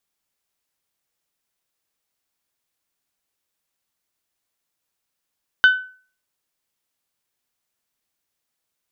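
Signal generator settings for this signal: glass hit bell, lowest mode 1.51 kHz, decay 0.42 s, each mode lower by 10.5 dB, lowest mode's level -6 dB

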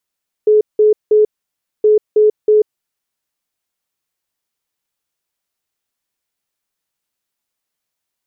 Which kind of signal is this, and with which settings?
beep pattern sine 426 Hz, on 0.14 s, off 0.18 s, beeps 3, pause 0.59 s, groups 2, -6.5 dBFS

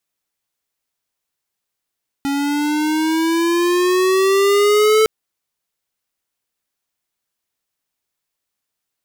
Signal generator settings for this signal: gliding synth tone square, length 2.81 s, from 277 Hz, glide +8 st, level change +7.5 dB, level -12 dB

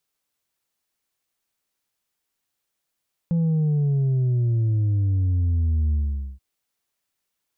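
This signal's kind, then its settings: sub drop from 170 Hz, over 3.08 s, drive 3 dB, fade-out 0.46 s, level -18.5 dB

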